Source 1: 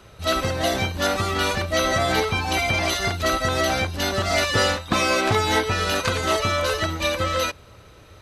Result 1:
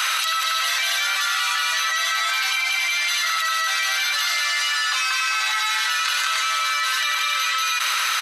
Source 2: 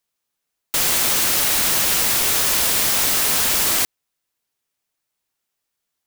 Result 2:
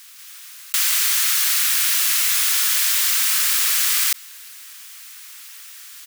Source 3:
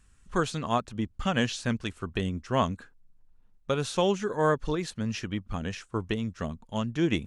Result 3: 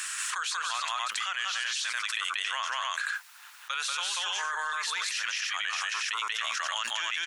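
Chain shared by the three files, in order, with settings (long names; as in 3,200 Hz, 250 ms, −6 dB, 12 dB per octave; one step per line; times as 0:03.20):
high-pass filter 1,300 Hz 24 dB per octave
on a send: loudspeakers that aren't time-aligned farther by 64 metres 0 dB, 95 metres −3 dB
on the sum: envelope flattener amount 100%
level −4.5 dB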